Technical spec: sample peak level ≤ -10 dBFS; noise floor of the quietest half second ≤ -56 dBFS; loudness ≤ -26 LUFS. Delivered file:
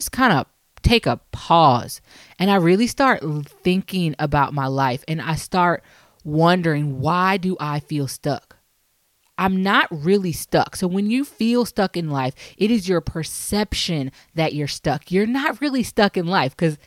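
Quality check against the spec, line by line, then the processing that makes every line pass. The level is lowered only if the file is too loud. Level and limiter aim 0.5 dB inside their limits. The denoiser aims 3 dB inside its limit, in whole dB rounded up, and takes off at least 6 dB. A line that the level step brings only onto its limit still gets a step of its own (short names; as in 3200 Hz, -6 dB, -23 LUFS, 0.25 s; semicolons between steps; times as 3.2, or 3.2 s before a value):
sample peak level -3.5 dBFS: fail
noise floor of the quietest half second -65 dBFS: OK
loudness -20.0 LUFS: fail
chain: gain -6.5 dB; limiter -10.5 dBFS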